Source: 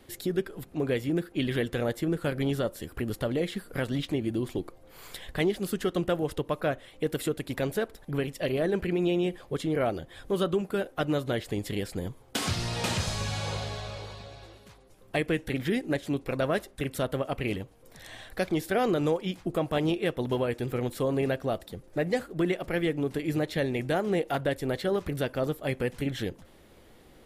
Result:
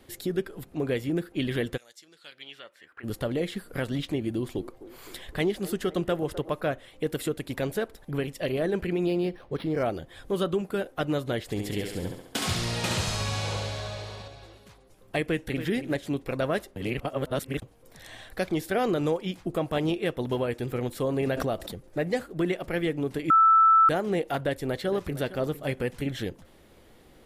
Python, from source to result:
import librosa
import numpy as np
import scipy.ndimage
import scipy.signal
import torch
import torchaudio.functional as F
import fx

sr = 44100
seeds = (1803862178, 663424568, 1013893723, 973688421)

y = fx.bandpass_q(x, sr, hz=fx.line((1.76, 7700.0), (3.03, 1400.0)), q=2.4, at=(1.76, 3.03), fade=0.02)
y = fx.echo_wet_bandpass(y, sr, ms=256, feedback_pct=61, hz=630.0, wet_db=-13.0, at=(4.3, 6.59))
y = fx.resample_linear(y, sr, factor=6, at=(9.06, 9.83))
y = fx.echo_thinned(y, sr, ms=69, feedback_pct=62, hz=230.0, wet_db=-4.0, at=(11.43, 14.28))
y = fx.echo_throw(y, sr, start_s=15.24, length_s=0.42, ms=280, feedback_pct=10, wet_db=-10.5)
y = fx.pre_swell(y, sr, db_per_s=40.0, at=(21.19, 21.9))
y = fx.echo_throw(y, sr, start_s=24.39, length_s=0.9, ms=460, feedback_pct=15, wet_db=-15.0)
y = fx.edit(y, sr, fx.reverse_span(start_s=16.76, length_s=0.86),
    fx.bleep(start_s=23.3, length_s=0.59, hz=1320.0, db=-14.5), tone=tone)